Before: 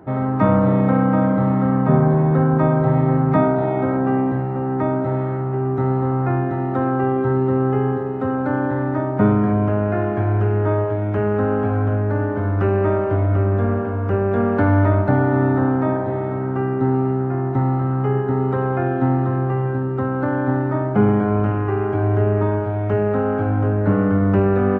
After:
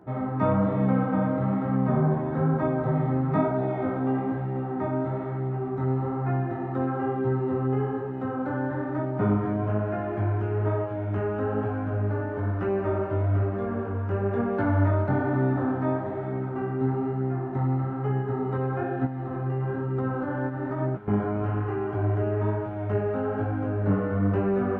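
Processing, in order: 19.05–21.08 s: compressor with a negative ratio -21 dBFS, ratio -0.5; chorus 1.1 Hz, delay 15.5 ms, depth 7.1 ms; feedback echo behind a high-pass 204 ms, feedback 82%, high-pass 2.2 kHz, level -10.5 dB; trim -5 dB

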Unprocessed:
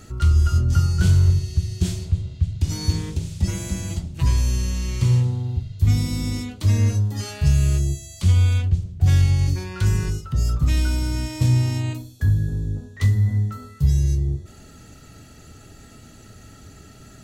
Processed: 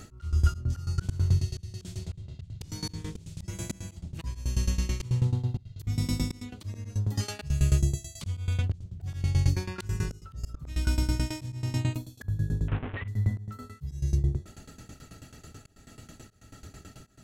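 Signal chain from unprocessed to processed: 12.68–13.08 s: one-bit delta coder 16 kbps, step -26 dBFS; tremolo saw down 9.2 Hz, depth 90%; slow attack 279 ms; trim +1 dB

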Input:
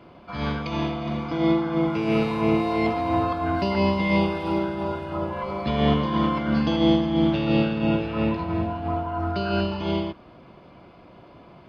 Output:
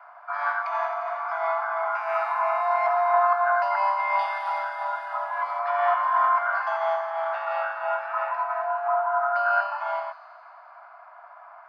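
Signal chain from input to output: steep high-pass 640 Hz 96 dB/octave; resonant high shelf 2.2 kHz -13 dB, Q 3, from 4.19 s -6.5 dB, from 5.59 s -14 dB; feedback echo behind a high-pass 88 ms, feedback 80%, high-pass 3.1 kHz, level -11.5 dB; trim +3.5 dB

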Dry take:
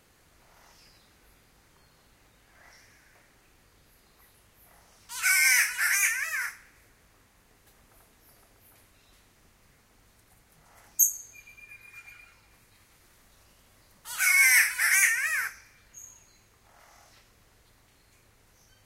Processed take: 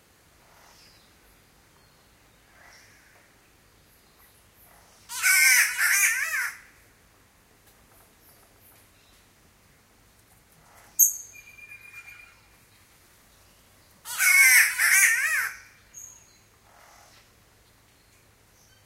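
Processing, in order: high-pass 45 Hz; de-hum 124.7 Hz, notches 28; trim +3.5 dB

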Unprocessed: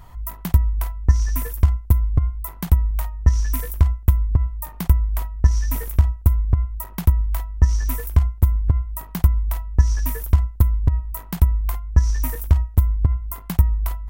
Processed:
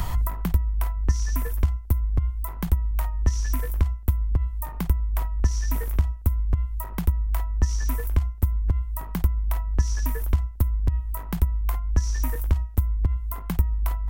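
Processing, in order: three bands compressed up and down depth 100%; trim -5.5 dB

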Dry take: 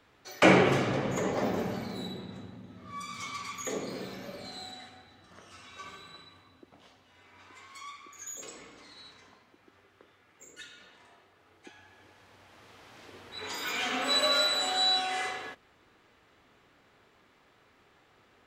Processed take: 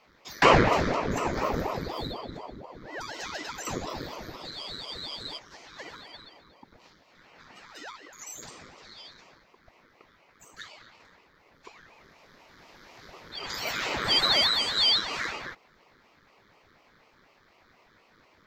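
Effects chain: static phaser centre 2.7 kHz, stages 6; spectral freeze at 4.58 s, 0.80 s; ring modulator with a swept carrier 450 Hz, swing 90%, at 4.1 Hz; trim +8 dB

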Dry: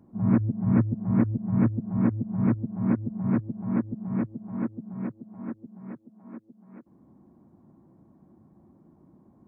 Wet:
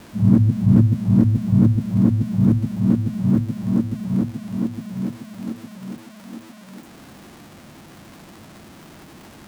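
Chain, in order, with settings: zero-crossing glitches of -17 dBFS; tilt EQ -4.5 dB/octave; hum notches 60/120/180/240 Hz; trim -2.5 dB

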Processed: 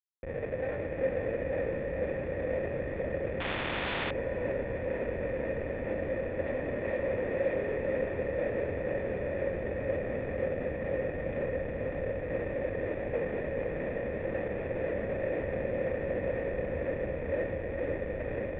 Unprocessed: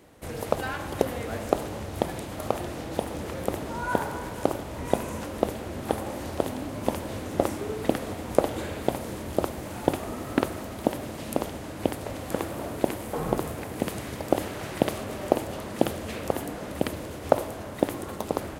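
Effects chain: 6.46–7.72 s: treble shelf 3 kHz +11.5 dB; in parallel at -2 dB: level held to a coarse grid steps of 15 dB; on the sum: Schmitt trigger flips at -29.5 dBFS; cascade formant filter e; on a send: echo that smears into a reverb 475 ms, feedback 71%, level -4.5 dB; 3.40–4.11 s: on the sum: spectrum-flattening compressor 4:1; trim +6.5 dB

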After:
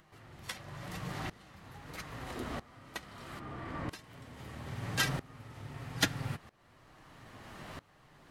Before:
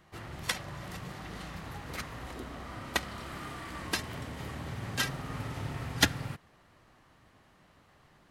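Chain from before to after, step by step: 3.39–3.89 s: low-pass 1 kHz 6 dB/octave; in parallel at +2 dB: compression, threshold -48 dBFS, peak gain reduction 27 dB; on the sum: flange 1 Hz, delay 6.1 ms, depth 3.2 ms, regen -46%; upward compressor, threshold -41 dBFS; sawtooth tremolo in dB swelling 0.77 Hz, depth 21 dB; trim +6 dB

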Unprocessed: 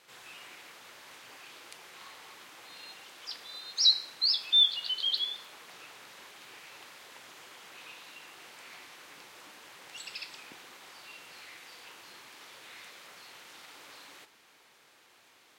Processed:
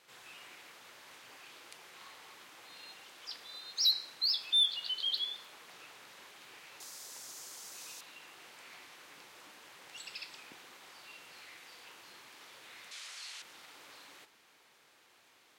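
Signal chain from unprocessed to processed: 6.80–8.01 s: resonant high shelf 4.2 kHz +12 dB, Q 1.5; saturation -16 dBFS, distortion -19 dB; 12.91–13.42 s: frequency weighting ITU-R 468; trim -3.5 dB

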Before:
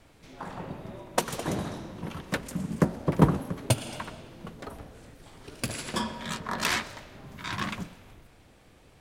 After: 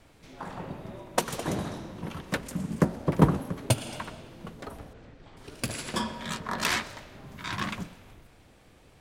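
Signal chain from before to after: 4.93–5.37 s: distance through air 160 m

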